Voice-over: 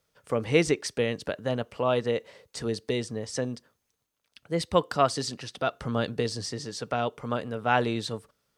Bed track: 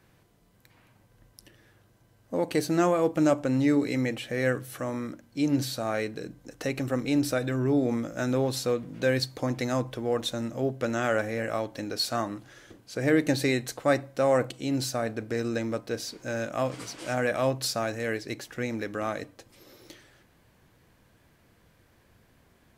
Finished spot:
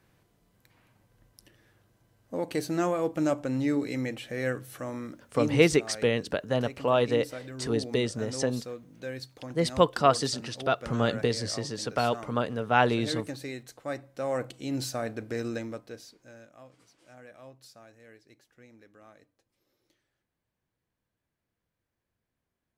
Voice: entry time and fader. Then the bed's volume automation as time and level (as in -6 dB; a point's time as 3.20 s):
5.05 s, +1.5 dB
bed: 5.49 s -4 dB
5.74 s -12.5 dB
13.75 s -12.5 dB
14.79 s -3 dB
15.49 s -3 dB
16.59 s -23.5 dB